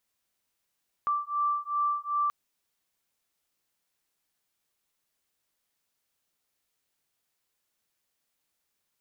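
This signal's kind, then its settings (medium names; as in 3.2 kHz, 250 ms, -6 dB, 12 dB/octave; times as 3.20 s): beating tones 1.17 kHz, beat 2.6 Hz, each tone -29 dBFS 1.23 s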